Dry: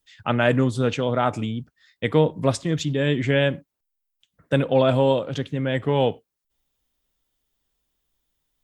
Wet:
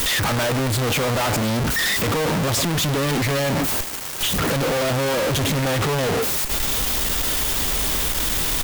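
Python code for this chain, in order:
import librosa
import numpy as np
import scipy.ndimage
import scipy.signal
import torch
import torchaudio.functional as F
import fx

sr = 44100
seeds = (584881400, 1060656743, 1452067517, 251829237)

y = np.sign(x) * np.sqrt(np.mean(np.square(x)))
y = fx.cheby_harmonics(y, sr, harmonics=(5,), levels_db=(-14,), full_scale_db=-23.5)
y = y * 10.0 ** (3.5 / 20.0)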